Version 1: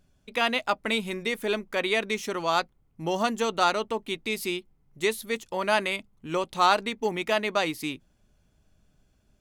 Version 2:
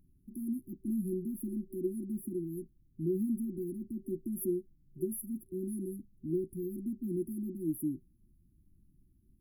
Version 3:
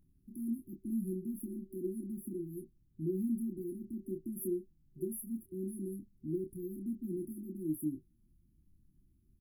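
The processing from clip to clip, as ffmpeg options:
-af "afftfilt=real='re*(1-between(b*sr/4096,380,9800))':imag='im*(1-between(b*sr/4096,380,9800))':win_size=4096:overlap=0.75"
-filter_complex "[0:a]asplit=2[a][b];[b]adelay=26,volume=-6dB[c];[a][c]amix=inputs=2:normalize=0,volume=-3.5dB"

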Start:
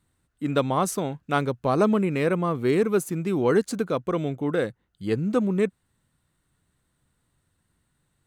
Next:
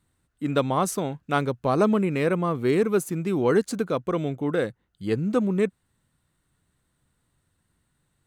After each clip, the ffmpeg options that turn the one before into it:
-af anull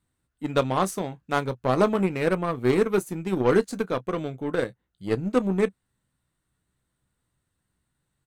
-filter_complex "[0:a]asplit=2[a][b];[b]aecho=0:1:16|31:0.299|0.158[c];[a][c]amix=inputs=2:normalize=0,aeval=exprs='0.376*(cos(1*acos(clip(val(0)/0.376,-1,1)))-cos(1*PI/2))+0.00668*(cos(6*acos(clip(val(0)/0.376,-1,1)))-cos(6*PI/2))+0.0266*(cos(7*acos(clip(val(0)/0.376,-1,1)))-cos(7*PI/2))':c=same"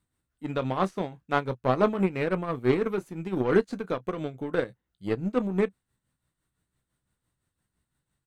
-filter_complex "[0:a]acrossover=split=4300[a][b];[b]acompressor=threshold=-57dB:ratio=4:attack=1:release=60[c];[a][c]amix=inputs=2:normalize=0,tremolo=f=5.9:d=0.59"

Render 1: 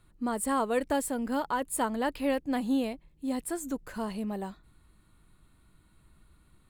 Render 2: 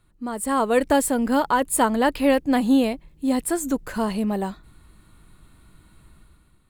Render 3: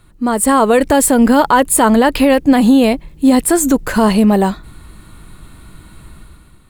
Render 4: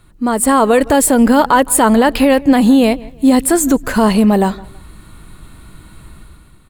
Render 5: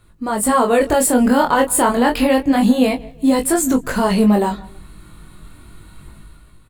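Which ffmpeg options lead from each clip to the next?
-af "dynaudnorm=f=160:g=7:m=10dB"
-af "alimiter=level_in=15dB:limit=-1dB:release=50:level=0:latency=1,volume=-1dB"
-filter_complex "[0:a]asplit=2[a][b];[b]adelay=163,lowpass=f=3.2k:p=1,volume=-21.5dB,asplit=2[c][d];[d]adelay=163,lowpass=f=3.2k:p=1,volume=0.32[e];[a][c][e]amix=inputs=3:normalize=0"
-filter_complex "[0:a]flanger=delay=18:depth=7.9:speed=0.3,asplit=2[a][b];[b]adelay=20,volume=-8dB[c];[a][c]amix=inputs=2:normalize=0,volume=-1dB"

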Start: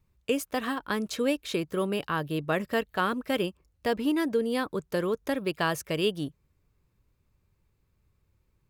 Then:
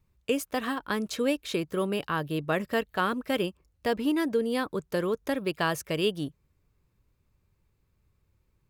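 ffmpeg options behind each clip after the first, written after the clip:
-af anull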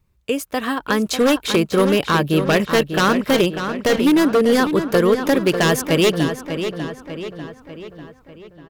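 -filter_complex "[0:a]dynaudnorm=f=240:g=7:m=8dB,aeval=exprs='0.2*(abs(mod(val(0)/0.2+3,4)-2)-1)':c=same,asplit=2[a][b];[b]adelay=595,lowpass=f=4.7k:p=1,volume=-8.5dB,asplit=2[c][d];[d]adelay=595,lowpass=f=4.7k:p=1,volume=0.53,asplit=2[e][f];[f]adelay=595,lowpass=f=4.7k:p=1,volume=0.53,asplit=2[g][h];[h]adelay=595,lowpass=f=4.7k:p=1,volume=0.53,asplit=2[i][j];[j]adelay=595,lowpass=f=4.7k:p=1,volume=0.53,asplit=2[k][l];[l]adelay=595,lowpass=f=4.7k:p=1,volume=0.53[m];[c][e][g][i][k][m]amix=inputs=6:normalize=0[n];[a][n]amix=inputs=2:normalize=0,volume=5dB"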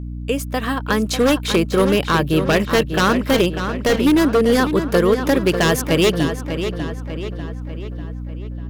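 -filter_complex "[0:a]acrossover=split=7800[a][b];[b]acrusher=bits=4:mode=log:mix=0:aa=0.000001[c];[a][c]amix=inputs=2:normalize=0,aeval=exprs='val(0)+0.0447*(sin(2*PI*60*n/s)+sin(2*PI*2*60*n/s)/2+sin(2*PI*3*60*n/s)/3+sin(2*PI*4*60*n/s)/4+sin(2*PI*5*60*n/s)/5)':c=same"

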